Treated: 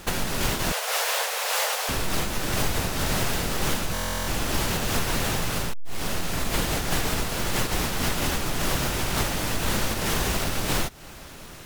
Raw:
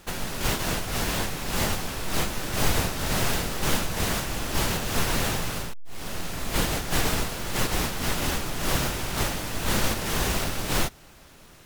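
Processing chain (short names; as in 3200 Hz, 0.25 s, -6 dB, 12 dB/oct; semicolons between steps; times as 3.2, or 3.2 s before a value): 0.72–1.89 steep high-pass 460 Hz 72 dB/oct; compressor 4:1, threshold -31 dBFS, peak gain reduction 12.5 dB; stuck buffer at 3.93, samples 1024, times 14; gain +8.5 dB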